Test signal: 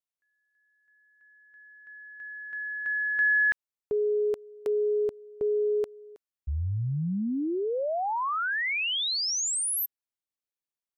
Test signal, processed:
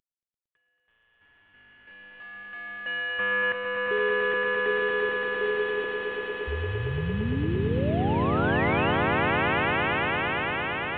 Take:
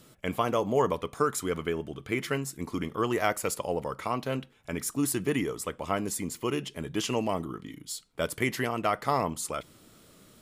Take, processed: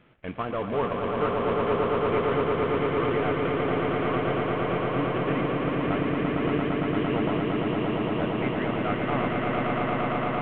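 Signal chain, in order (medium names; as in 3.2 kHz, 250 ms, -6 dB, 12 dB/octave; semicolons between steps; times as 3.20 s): CVSD coder 16 kbps; short-mantissa float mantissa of 8-bit; echo with a slow build-up 114 ms, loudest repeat 8, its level -4 dB; trim -2 dB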